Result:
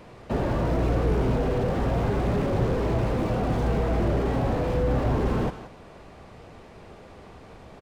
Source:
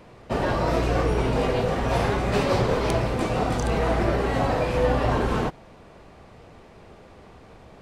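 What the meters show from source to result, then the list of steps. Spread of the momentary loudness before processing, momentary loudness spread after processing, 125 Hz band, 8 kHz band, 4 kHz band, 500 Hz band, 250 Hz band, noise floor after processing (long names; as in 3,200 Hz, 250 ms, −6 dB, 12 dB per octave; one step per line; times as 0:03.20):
3 LU, 4 LU, +1.0 dB, can't be measured, −8.5 dB, −3.0 dB, 0.0 dB, −47 dBFS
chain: single-tap delay 179 ms −18.5 dB
slew-rate limiting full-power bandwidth 24 Hz
level +1.5 dB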